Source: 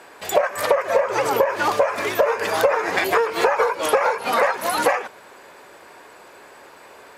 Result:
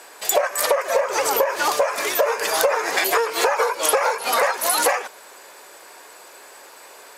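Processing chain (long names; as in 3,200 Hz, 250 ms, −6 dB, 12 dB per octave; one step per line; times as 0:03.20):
bass and treble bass −14 dB, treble +11 dB
in parallel at −10.5 dB: soft clipping −12 dBFS, distortion −16 dB
on the sum: level −2.5 dB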